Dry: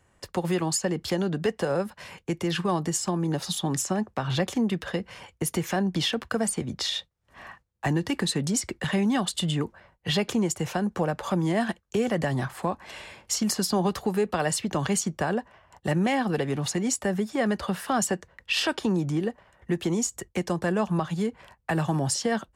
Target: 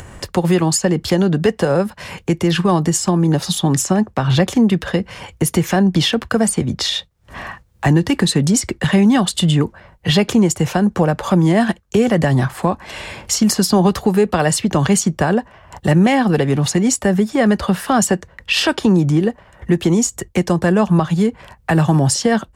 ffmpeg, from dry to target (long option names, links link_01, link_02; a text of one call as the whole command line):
ffmpeg -i in.wav -af "lowshelf=frequency=230:gain=6,acompressor=mode=upward:threshold=-32dB:ratio=2.5,volume=9dB" out.wav